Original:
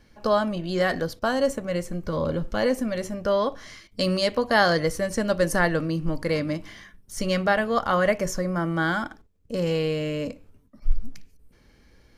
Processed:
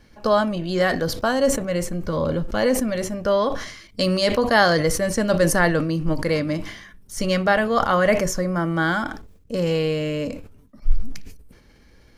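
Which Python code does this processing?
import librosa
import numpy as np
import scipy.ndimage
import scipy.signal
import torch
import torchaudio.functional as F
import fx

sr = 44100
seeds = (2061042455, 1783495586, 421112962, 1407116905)

y = fx.sustainer(x, sr, db_per_s=75.0)
y = y * 10.0 ** (3.0 / 20.0)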